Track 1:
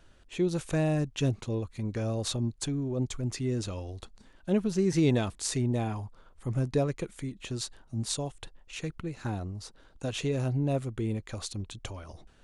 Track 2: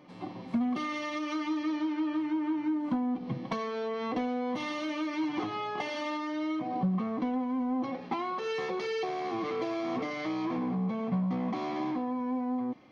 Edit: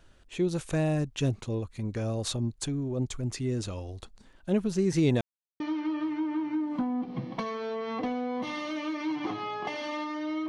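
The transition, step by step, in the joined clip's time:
track 1
5.21–5.60 s: mute
5.60 s: go over to track 2 from 1.73 s

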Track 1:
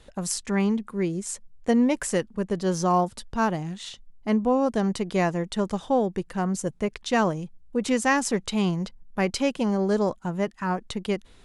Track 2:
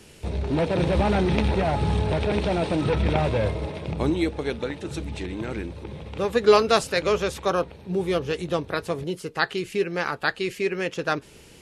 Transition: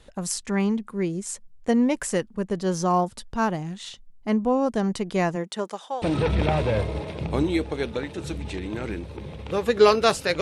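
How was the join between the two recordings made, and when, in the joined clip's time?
track 1
5.35–6.02 s: high-pass 150 Hz -> 1.1 kHz
6.02 s: go over to track 2 from 2.69 s

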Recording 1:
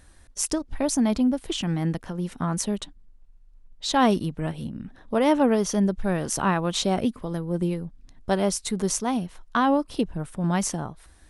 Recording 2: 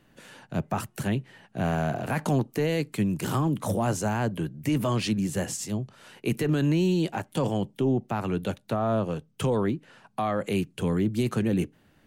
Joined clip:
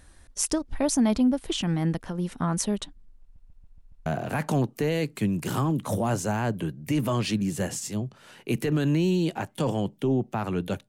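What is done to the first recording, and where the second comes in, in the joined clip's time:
recording 1
3.22 s: stutter in place 0.14 s, 6 plays
4.06 s: go over to recording 2 from 1.83 s

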